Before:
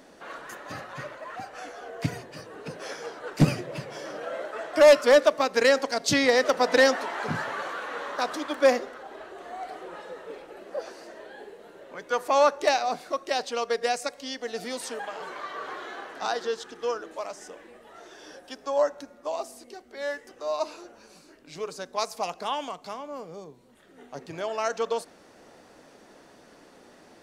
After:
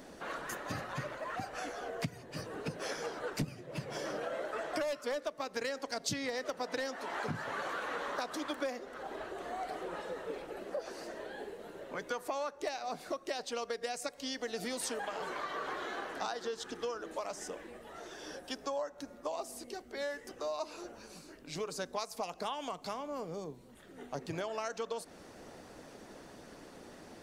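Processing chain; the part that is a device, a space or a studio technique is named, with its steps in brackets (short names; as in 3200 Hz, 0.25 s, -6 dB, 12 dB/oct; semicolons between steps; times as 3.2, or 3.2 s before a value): harmonic-percussive split harmonic -4 dB; ASMR close-microphone chain (low shelf 220 Hz +8 dB; compressor 10:1, threshold -35 dBFS, peak gain reduction 25.5 dB; high shelf 7700 Hz +4 dB); gain +1 dB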